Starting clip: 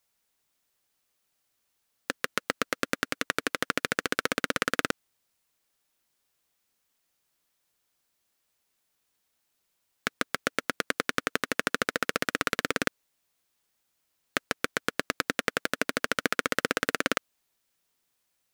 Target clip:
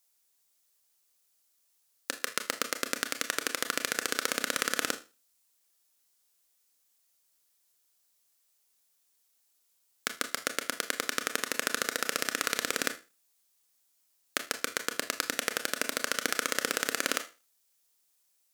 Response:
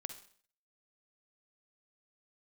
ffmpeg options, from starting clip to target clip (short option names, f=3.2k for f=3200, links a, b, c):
-filter_complex "[0:a]bass=f=250:g=-7,treble=f=4k:g=10[a];[1:a]atrim=start_sample=2205,asetrate=74970,aresample=44100[b];[a][b]afir=irnorm=-1:irlink=0,volume=3.5dB"